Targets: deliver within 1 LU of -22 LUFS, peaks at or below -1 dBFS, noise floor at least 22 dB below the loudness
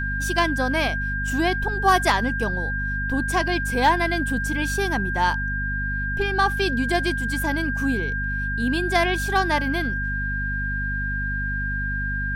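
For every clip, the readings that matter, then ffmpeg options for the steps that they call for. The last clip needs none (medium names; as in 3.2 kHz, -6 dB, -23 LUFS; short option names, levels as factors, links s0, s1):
hum 50 Hz; highest harmonic 250 Hz; hum level -26 dBFS; steady tone 1.6 kHz; tone level -26 dBFS; loudness -23.0 LUFS; peak level -7.0 dBFS; loudness target -22.0 LUFS
-> -af "bandreject=f=50:t=h:w=4,bandreject=f=100:t=h:w=4,bandreject=f=150:t=h:w=4,bandreject=f=200:t=h:w=4,bandreject=f=250:t=h:w=4"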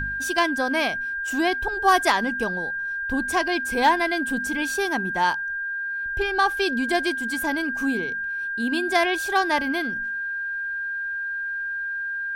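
hum not found; steady tone 1.6 kHz; tone level -26 dBFS
-> -af "bandreject=f=1600:w=30"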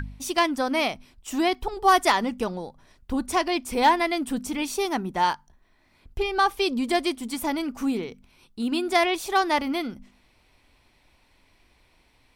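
steady tone not found; loudness -25.0 LUFS; peak level -9.0 dBFS; loudness target -22.0 LUFS
-> -af "volume=1.41"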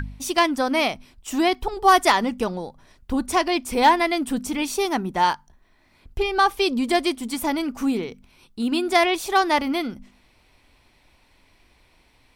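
loudness -22.0 LUFS; peak level -6.0 dBFS; noise floor -60 dBFS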